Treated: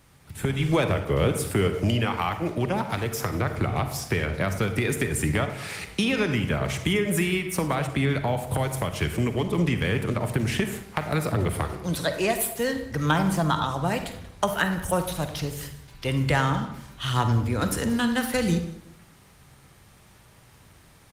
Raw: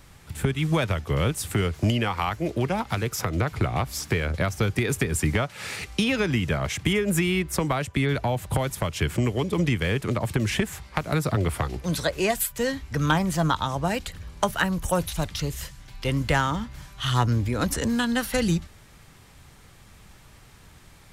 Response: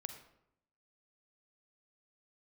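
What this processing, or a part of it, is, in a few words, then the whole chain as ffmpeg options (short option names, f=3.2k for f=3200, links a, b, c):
far-field microphone of a smart speaker: -filter_complex "[0:a]asplit=3[a][b][c];[a]afade=t=out:st=0.68:d=0.02[d];[b]adynamicequalizer=threshold=0.0126:dfrequency=410:dqfactor=0.98:tfrequency=410:tqfactor=0.98:attack=5:release=100:ratio=0.375:range=2.5:mode=boostabove:tftype=bell,afade=t=in:st=0.68:d=0.02,afade=t=out:st=1.67:d=0.02[e];[c]afade=t=in:st=1.67:d=0.02[f];[d][e][f]amix=inputs=3:normalize=0,aecho=1:1:185|370:0.0944|0.0179[g];[1:a]atrim=start_sample=2205[h];[g][h]afir=irnorm=-1:irlink=0,highpass=f=84:p=1,dynaudnorm=f=160:g=5:m=3.5dB" -ar 48000 -c:a libopus -b:a 32k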